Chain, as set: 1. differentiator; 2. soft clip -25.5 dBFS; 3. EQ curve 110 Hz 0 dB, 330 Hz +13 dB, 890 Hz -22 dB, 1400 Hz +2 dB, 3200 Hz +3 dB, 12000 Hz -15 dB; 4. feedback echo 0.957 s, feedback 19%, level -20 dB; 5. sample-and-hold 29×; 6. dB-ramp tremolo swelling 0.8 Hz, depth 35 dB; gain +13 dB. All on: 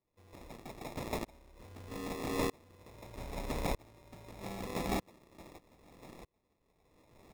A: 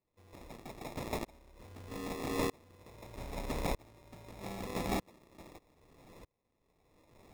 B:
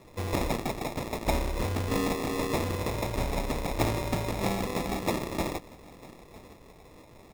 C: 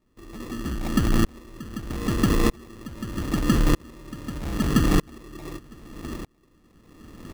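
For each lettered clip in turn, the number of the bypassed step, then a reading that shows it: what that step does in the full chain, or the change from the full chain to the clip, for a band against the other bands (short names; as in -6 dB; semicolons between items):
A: 4, momentary loudness spread change +1 LU; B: 6, crest factor change -3.0 dB; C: 1, 125 Hz band +6.5 dB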